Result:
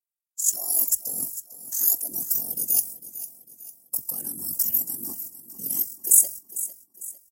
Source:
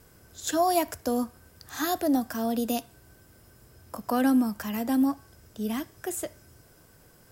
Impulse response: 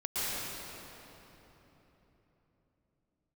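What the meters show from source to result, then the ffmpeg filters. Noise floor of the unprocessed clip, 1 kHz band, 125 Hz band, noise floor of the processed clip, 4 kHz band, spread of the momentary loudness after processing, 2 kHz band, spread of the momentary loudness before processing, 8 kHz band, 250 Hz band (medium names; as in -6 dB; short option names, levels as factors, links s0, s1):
-57 dBFS, under -20 dB, -6.5 dB, -82 dBFS, -3.0 dB, 19 LU, under -20 dB, 13 LU, +16.0 dB, -21.5 dB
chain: -filter_complex "[0:a]agate=range=0.00178:threshold=0.00562:ratio=16:detection=peak,bandreject=f=3800:w=7.5,aeval=exprs='val(0)*sin(2*PI*23*n/s)':c=same,equalizer=f=1400:w=1.4:g=-8,areverse,acompressor=threshold=0.0178:ratio=12,areverse,afftfilt=real='hypot(re,im)*cos(2*PI*random(0))':imag='hypot(re,im)*sin(2*PI*random(1))':win_size=512:overlap=0.75,aexciter=amount=15.2:drive=6.7:freq=5700,highshelf=f=2100:g=8,asplit=2[s0][s1];[s1]aecho=0:1:451|902|1353|1804:0.2|0.0878|0.0386|0.017[s2];[s0][s2]amix=inputs=2:normalize=0,volume=0.841"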